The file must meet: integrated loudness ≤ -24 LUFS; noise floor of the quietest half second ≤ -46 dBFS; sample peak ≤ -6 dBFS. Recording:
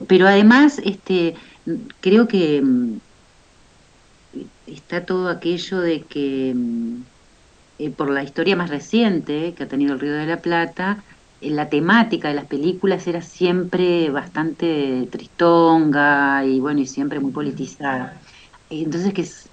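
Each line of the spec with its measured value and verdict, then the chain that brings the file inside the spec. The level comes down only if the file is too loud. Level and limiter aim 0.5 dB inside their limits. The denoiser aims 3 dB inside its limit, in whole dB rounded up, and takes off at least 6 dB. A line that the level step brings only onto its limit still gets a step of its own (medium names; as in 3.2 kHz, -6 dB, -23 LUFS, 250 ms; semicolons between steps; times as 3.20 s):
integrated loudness -19.0 LUFS: fail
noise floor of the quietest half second -52 dBFS: pass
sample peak -2.0 dBFS: fail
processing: trim -5.5 dB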